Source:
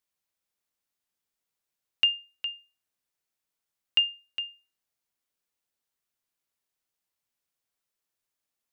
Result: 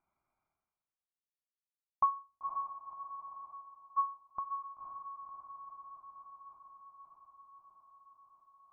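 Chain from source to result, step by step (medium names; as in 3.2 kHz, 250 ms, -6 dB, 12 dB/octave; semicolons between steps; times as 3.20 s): rotating-head pitch shifter -11 st; level-controlled noise filter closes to 1.3 kHz, open at -31 dBFS; gate -58 dBFS, range -33 dB; steep high-pass 150 Hz; tilt shelf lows -3.5 dB, about 1.5 kHz; on a send: echo that smears into a reverb 521 ms, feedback 44%, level -7 dB; on the sum: frequency inversion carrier 2.6 kHz; graphic EQ 250/500/1000/2000 Hz -4/+9/-4/-11 dB; reverse; upward compressor, threshold -41 dBFS; reverse; static phaser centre 1.8 kHz, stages 6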